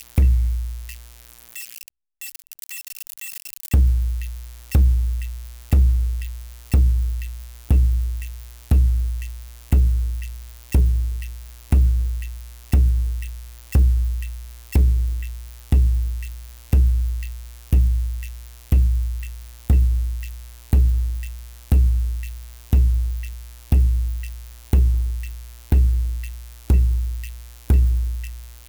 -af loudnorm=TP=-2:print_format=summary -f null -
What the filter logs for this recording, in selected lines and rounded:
Input Integrated:    -21.8 LUFS
Input True Peak:      -8.0 dBTP
Input LRA:             1.1 LU
Input Threshold:     -33.0 LUFS